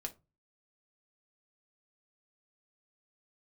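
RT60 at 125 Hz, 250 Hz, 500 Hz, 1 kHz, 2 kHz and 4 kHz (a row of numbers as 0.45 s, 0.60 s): 0.50 s, 0.35 s, 0.25 s, 0.25 s, 0.20 s, 0.15 s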